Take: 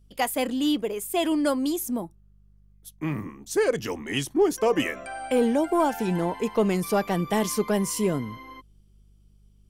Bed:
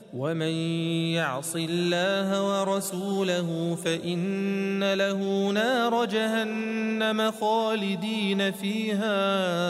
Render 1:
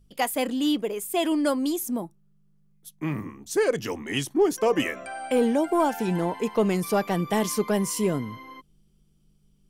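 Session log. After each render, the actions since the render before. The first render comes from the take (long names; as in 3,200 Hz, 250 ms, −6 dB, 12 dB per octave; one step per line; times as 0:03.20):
hum removal 50 Hz, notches 2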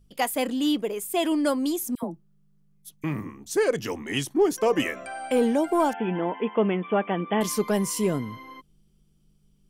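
0:01.95–0:03.04: all-pass dispersion lows, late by 78 ms, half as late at 1,100 Hz
0:05.93–0:07.41: linear-phase brick-wall band-pass 170–3,500 Hz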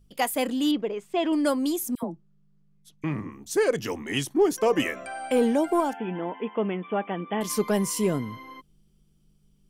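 0:00.71–0:01.33: high-frequency loss of the air 180 metres
0:02.03–0:03.32: high-frequency loss of the air 69 metres
0:05.80–0:07.50: tuned comb filter 270 Hz, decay 0.17 s, harmonics odd, mix 40%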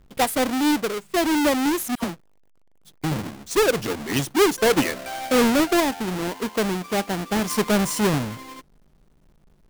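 each half-wave held at its own peak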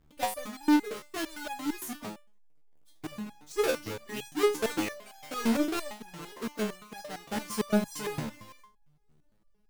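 step-sequenced resonator 8.8 Hz 75–830 Hz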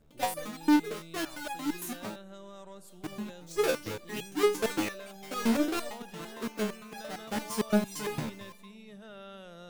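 mix in bed −22.5 dB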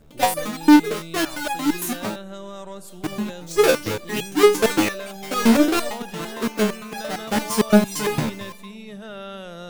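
level +11.5 dB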